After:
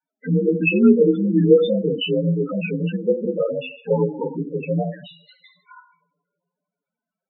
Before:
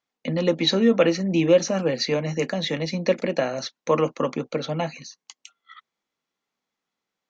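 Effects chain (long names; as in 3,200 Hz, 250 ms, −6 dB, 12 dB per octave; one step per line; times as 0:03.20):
partials spread apart or drawn together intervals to 85%
coupled-rooms reverb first 0.65 s, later 2.9 s, from −28 dB, DRR 4.5 dB
spectral peaks only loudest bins 8
level +4.5 dB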